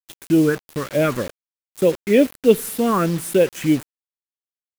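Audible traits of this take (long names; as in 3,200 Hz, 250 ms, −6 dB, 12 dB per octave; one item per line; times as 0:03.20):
phaser sweep stages 4, 3.3 Hz, lowest notch 640–1,300 Hz
a quantiser's noise floor 6 bits, dither none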